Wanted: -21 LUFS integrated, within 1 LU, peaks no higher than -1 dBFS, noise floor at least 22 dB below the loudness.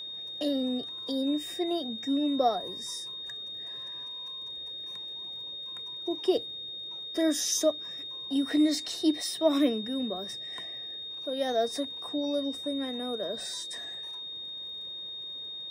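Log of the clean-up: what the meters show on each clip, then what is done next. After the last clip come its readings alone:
tick rate 43 per s; steady tone 3.7 kHz; tone level -37 dBFS; loudness -31.5 LUFS; peak level -12.0 dBFS; loudness target -21.0 LUFS
-> de-click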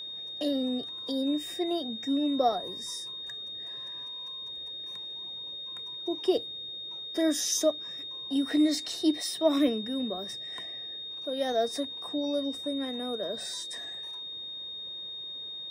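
tick rate 0.13 per s; steady tone 3.7 kHz; tone level -37 dBFS
-> band-stop 3.7 kHz, Q 30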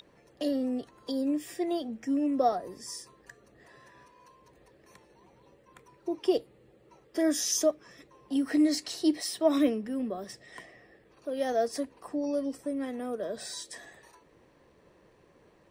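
steady tone not found; loudness -30.5 LUFS; peak level -12.5 dBFS; loudness target -21.0 LUFS
-> trim +9.5 dB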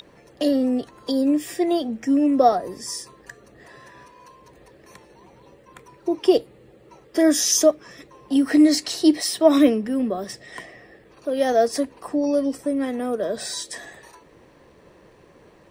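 loudness -21.0 LUFS; peak level -3.0 dBFS; noise floor -53 dBFS

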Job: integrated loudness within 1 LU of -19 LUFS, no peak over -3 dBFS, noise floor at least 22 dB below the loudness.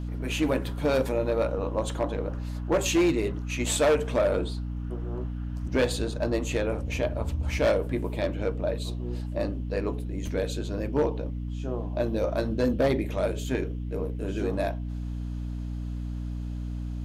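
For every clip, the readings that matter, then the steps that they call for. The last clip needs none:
clipped samples 0.9%; clipping level -17.5 dBFS; hum 60 Hz; highest harmonic 300 Hz; hum level -30 dBFS; loudness -28.5 LUFS; peak level -17.5 dBFS; loudness target -19.0 LUFS
-> clip repair -17.5 dBFS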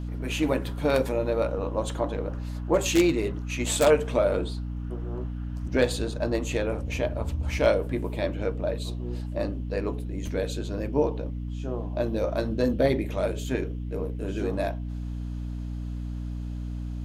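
clipped samples 0.0%; hum 60 Hz; highest harmonic 300 Hz; hum level -30 dBFS
-> de-hum 60 Hz, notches 5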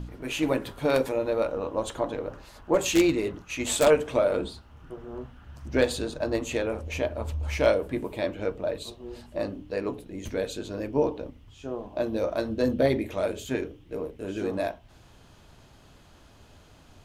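hum not found; loudness -28.0 LUFS; peak level -7.5 dBFS; loudness target -19.0 LUFS
-> trim +9 dB; peak limiter -3 dBFS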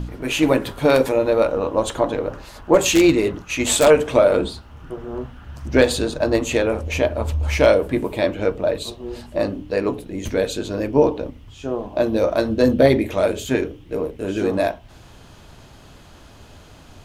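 loudness -19.5 LUFS; peak level -3.0 dBFS; noise floor -45 dBFS

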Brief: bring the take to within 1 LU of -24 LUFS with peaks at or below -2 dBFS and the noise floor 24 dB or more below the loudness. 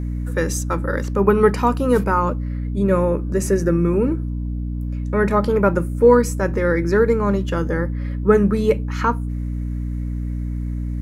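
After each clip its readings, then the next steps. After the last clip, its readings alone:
hum 60 Hz; highest harmonic 300 Hz; hum level -22 dBFS; loudness -20.0 LUFS; peak level -2.0 dBFS; loudness target -24.0 LUFS
-> de-hum 60 Hz, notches 5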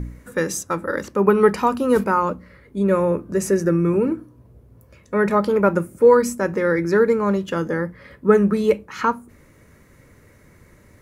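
hum not found; loudness -19.5 LUFS; peak level -2.5 dBFS; loudness target -24.0 LUFS
-> trim -4.5 dB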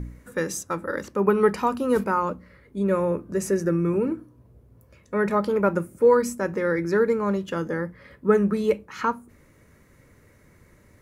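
loudness -24.0 LUFS; peak level -7.0 dBFS; noise floor -56 dBFS

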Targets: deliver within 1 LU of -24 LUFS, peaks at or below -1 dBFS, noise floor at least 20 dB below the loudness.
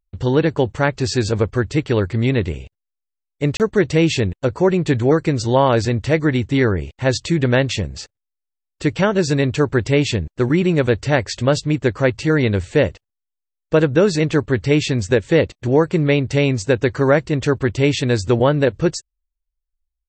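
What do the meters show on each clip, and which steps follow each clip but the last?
dropouts 1; longest dropout 28 ms; loudness -18.0 LUFS; peak level -2.5 dBFS; loudness target -24.0 LUFS
-> interpolate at 3.57 s, 28 ms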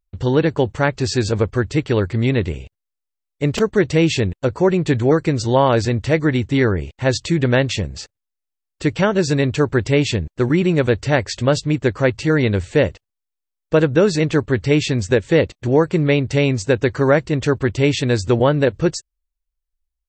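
dropouts 0; loudness -18.0 LUFS; peak level -2.5 dBFS; loudness target -24.0 LUFS
-> trim -6 dB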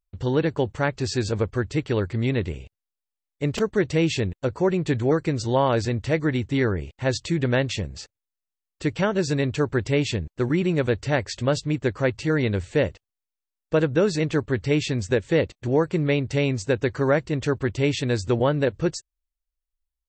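loudness -24.0 LUFS; peak level -8.5 dBFS; noise floor -87 dBFS

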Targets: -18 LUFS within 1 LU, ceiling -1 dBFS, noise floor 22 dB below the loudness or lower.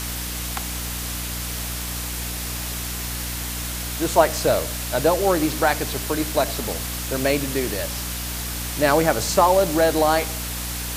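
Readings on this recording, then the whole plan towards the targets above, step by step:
hum 60 Hz; highest harmonic 300 Hz; hum level -30 dBFS; noise floor -29 dBFS; noise floor target -45 dBFS; loudness -22.5 LUFS; peak level -2.0 dBFS; loudness target -18.0 LUFS
-> hum notches 60/120/180/240/300 Hz; noise reduction 16 dB, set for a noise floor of -29 dBFS; trim +4.5 dB; peak limiter -1 dBFS

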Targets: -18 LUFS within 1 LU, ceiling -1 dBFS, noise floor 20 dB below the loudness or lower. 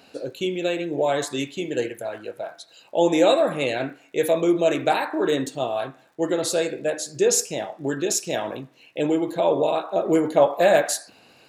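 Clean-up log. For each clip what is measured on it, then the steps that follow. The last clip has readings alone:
tick rate 47 per s; loudness -23.0 LUFS; peak level -4.5 dBFS; loudness target -18.0 LUFS
-> de-click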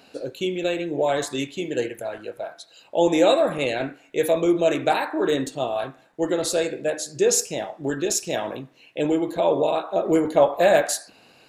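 tick rate 0.087 per s; loudness -23.0 LUFS; peak level -4.5 dBFS; loudness target -18.0 LUFS
-> trim +5 dB; peak limiter -1 dBFS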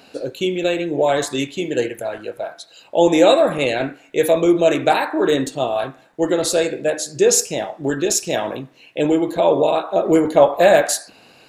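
loudness -18.0 LUFS; peak level -1.0 dBFS; noise floor -50 dBFS

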